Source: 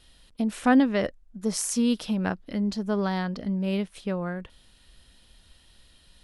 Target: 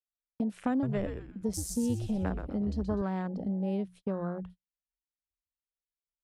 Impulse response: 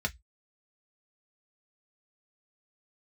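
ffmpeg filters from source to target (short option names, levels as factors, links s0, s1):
-filter_complex "[0:a]afwtdn=0.0178,highpass=44,bandreject=f=60:t=h:w=6,bandreject=f=120:t=h:w=6,bandreject=f=180:t=h:w=6,agate=range=0.0126:threshold=0.00501:ratio=16:detection=peak,acrossover=split=320|1100|5400[s0][s1][s2][s3];[s0]acompressor=threshold=0.0251:ratio=4[s4];[s1]acompressor=threshold=0.0158:ratio=4[s5];[s2]acompressor=threshold=0.00316:ratio=4[s6];[s3]acompressor=threshold=0.0112:ratio=4[s7];[s4][s5][s6][s7]amix=inputs=4:normalize=0,asettb=1/sr,asplit=3[s8][s9][s10];[s8]atrim=end=0.704[s11];[s9]atrim=start=0.7:end=3.02,asetpts=PTS-STARTPTS,afade=t=in:d=0.004:c=qsin,afade=t=out:st=2.316:d=0.004:c=qsin,asplit=5[s12][s13][s14][s15][s16];[s13]adelay=125,afreqshift=-130,volume=0.501[s17];[s14]adelay=250,afreqshift=-260,volume=0.186[s18];[s15]adelay=375,afreqshift=-390,volume=0.0684[s19];[s16]adelay=500,afreqshift=-520,volume=0.0254[s20];[s12][s17][s18][s19][s20]amix=inputs=5:normalize=0,atrim=end_sample=102312[s21];[s10]atrim=start=3.016[s22];[s11][s21]acrossfade=d=0.004:c1=hsin:c2=qsin[s23];[s23][s22]acrossfade=d=0.004:c1=qsin:c2=hsin"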